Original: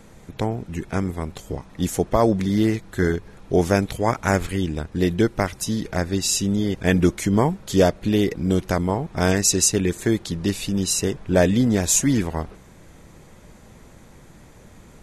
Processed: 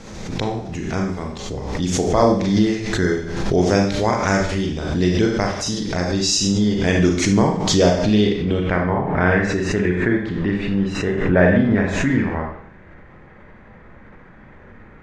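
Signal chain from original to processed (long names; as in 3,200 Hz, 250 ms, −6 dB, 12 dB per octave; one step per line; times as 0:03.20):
high-shelf EQ 7,500 Hz −7.5 dB
bit reduction 10 bits
low-pass filter sweep 5,700 Hz → 1,800 Hz, 0:08.04–0:08.81
four-comb reverb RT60 0.57 s, combs from 30 ms, DRR 0.5 dB
background raised ahead of every attack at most 44 dB per second
level −1 dB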